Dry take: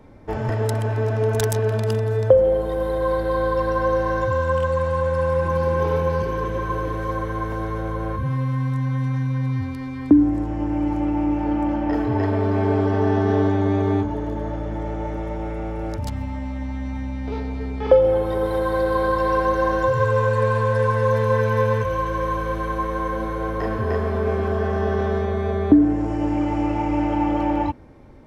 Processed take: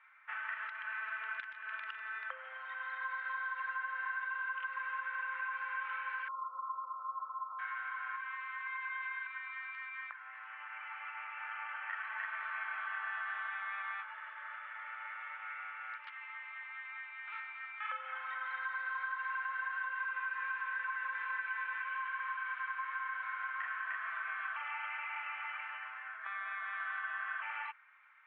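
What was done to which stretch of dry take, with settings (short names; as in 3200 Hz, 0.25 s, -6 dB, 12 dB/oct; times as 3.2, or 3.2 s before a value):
6.28–7.59 brick-wall FIR band-stop 1400–4700 Hz
8.66–9.27 comb 5.7 ms, depth 84%
24.56–27.42 reverse
whole clip: elliptic high-pass 1300 Hz, stop band 80 dB; compressor, threshold -38 dBFS; steep low-pass 2600 Hz 36 dB/oct; gain +2.5 dB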